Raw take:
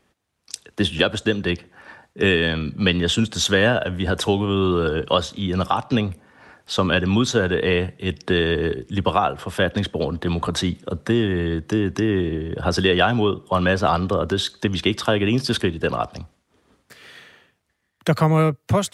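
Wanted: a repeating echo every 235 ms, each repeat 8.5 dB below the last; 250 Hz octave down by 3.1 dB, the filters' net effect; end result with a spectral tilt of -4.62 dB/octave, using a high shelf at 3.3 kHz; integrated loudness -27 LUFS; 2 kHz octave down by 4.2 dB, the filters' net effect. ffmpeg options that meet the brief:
-af "equalizer=f=250:t=o:g=-4.5,equalizer=f=2000:t=o:g=-4.5,highshelf=f=3300:g=-3.5,aecho=1:1:235|470|705|940:0.376|0.143|0.0543|0.0206,volume=0.631"

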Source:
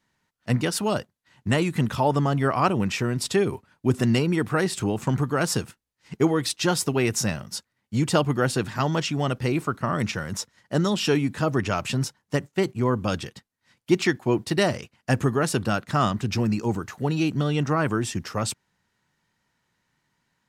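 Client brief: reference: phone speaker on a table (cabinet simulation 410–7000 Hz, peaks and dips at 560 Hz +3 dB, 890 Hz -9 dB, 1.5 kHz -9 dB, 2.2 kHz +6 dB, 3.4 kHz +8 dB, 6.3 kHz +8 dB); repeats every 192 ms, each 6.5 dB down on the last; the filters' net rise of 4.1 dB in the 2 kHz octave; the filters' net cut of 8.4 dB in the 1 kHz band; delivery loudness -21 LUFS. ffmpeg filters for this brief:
-af "highpass=f=410:w=0.5412,highpass=f=410:w=1.3066,equalizer=f=560:t=q:w=4:g=3,equalizer=f=890:t=q:w=4:g=-9,equalizer=f=1500:t=q:w=4:g=-9,equalizer=f=2200:t=q:w=4:g=6,equalizer=f=3400:t=q:w=4:g=8,equalizer=f=6300:t=q:w=4:g=8,lowpass=f=7000:w=0.5412,lowpass=f=7000:w=1.3066,equalizer=f=1000:t=o:g=-8,equalizer=f=2000:t=o:g=6.5,aecho=1:1:192|384|576|768|960|1152:0.473|0.222|0.105|0.0491|0.0231|0.0109,volume=1.78"

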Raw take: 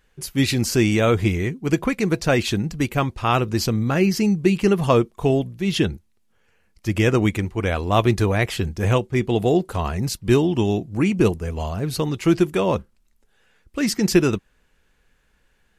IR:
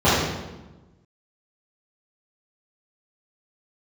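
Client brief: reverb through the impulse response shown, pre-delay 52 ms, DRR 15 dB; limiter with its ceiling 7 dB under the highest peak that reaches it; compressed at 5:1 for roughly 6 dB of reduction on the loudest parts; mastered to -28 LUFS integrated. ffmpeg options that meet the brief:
-filter_complex "[0:a]acompressor=threshold=0.126:ratio=5,alimiter=limit=0.188:level=0:latency=1,asplit=2[s0][s1];[1:a]atrim=start_sample=2205,adelay=52[s2];[s1][s2]afir=irnorm=-1:irlink=0,volume=0.0112[s3];[s0][s3]amix=inputs=2:normalize=0,volume=0.708"

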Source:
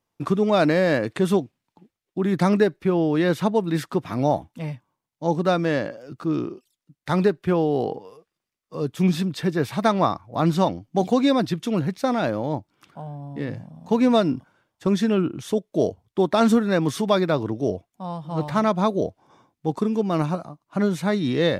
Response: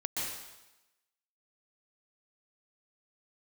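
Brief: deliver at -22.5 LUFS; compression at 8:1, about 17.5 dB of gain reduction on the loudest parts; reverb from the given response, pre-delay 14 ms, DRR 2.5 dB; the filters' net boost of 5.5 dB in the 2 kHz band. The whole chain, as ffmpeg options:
-filter_complex "[0:a]equalizer=f=2000:t=o:g=7,acompressor=threshold=0.0251:ratio=8,asplit=2[s0][s1];[1:a]atrim=start_sample=2205,adelay=14[s2];[s1][s2]afir=irnorm=-1:irlink=0,volume=0.447[s3];[s0][s3]amix=inputs=2:normalize=0,volume=4.22"

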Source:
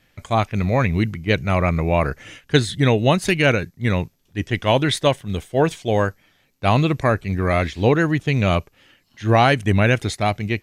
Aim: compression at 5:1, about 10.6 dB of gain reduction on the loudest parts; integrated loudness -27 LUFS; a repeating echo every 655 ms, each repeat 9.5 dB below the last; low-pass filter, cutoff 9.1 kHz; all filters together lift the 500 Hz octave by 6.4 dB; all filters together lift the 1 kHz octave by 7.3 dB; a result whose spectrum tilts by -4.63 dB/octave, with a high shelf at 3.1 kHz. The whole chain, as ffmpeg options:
-af "lowpass=9100,equalizer=f=500:t=o:g=5.5,equalizer=f=1000:t=o:g=7,highshelf=f=3100:g=7,acompressor=threshold=0.141:ratio=5,aecho=1:1:655|1310|1965|2620:0.335|0.111|0.0365|0.012,volume=0.562"

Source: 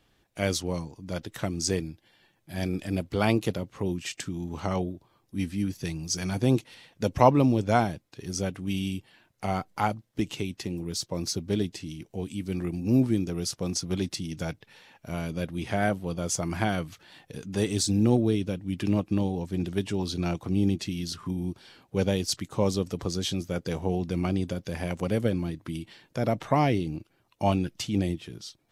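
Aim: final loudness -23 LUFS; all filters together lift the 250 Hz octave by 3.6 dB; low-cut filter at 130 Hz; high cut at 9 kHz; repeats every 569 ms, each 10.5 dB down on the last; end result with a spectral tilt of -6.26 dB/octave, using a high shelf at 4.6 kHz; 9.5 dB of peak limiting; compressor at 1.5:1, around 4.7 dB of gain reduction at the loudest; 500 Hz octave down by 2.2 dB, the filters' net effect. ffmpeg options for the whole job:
-af "highpass=130,lowpass=9000,equalizer=f=250:t=o:g=6.5,equalizer=f=500:t=o:g=-5,highshelf=f=4600:g=-7,acompressor=threshold=0.0447:ratio=1.5,alimiter=limit=0.106:level=0:latency=1,aecho=1:1:569|1138|1707:0.299|0.0896|0.0269,volume=2.66"

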